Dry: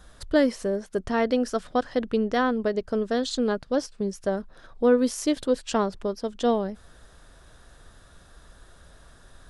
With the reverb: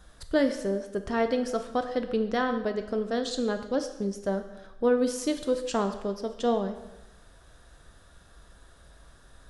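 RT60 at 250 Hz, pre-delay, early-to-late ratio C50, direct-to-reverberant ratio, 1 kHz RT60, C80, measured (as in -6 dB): 0.95 s, 5 ms, 10.0 dB, 7.0 dB, 1.0 s, 12.0 dB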